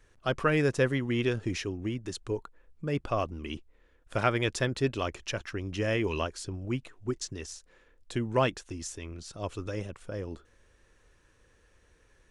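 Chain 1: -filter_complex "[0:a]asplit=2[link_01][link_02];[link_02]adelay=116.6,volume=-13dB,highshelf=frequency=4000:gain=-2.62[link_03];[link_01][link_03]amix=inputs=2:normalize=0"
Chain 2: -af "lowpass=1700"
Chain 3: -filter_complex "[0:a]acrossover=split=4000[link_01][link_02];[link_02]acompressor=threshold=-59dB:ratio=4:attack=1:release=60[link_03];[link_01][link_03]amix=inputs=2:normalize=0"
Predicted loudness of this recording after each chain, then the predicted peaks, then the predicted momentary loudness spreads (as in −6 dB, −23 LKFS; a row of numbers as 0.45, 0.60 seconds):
−32.0, −32.5, −32.0 LKFS; −11.5, −13.0, −11.0 dBFS; 13, 15, 15 LU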